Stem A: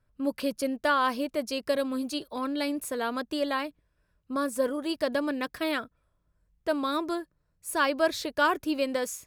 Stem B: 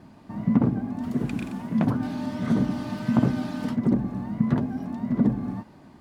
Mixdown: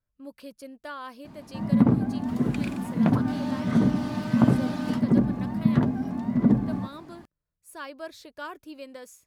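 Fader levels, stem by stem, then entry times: -13.5, +1.5 dB; 0.00, 1.25 s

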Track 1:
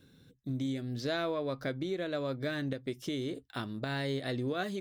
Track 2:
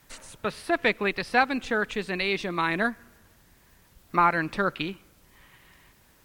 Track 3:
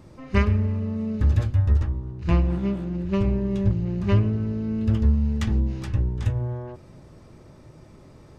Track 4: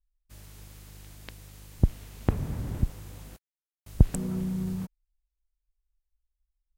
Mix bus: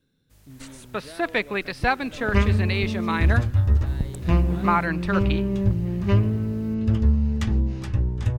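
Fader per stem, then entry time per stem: -10.0, -0.5, +0.5, -7.0 dB; 0.00, 0.50, 2.00, 0.00 s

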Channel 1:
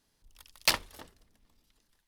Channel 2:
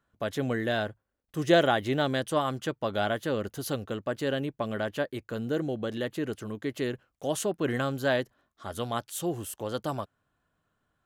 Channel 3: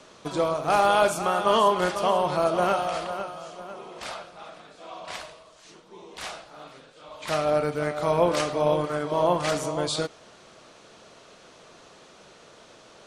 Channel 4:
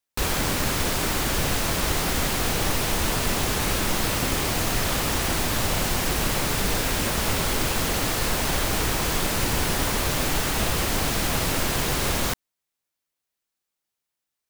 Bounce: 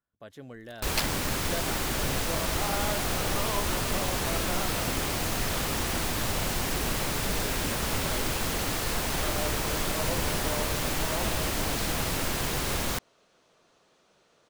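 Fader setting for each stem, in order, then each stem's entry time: -5.0, -15.0, -14.0, -5.0 dB; 0.30, 0.00, 1.90, 0.65 s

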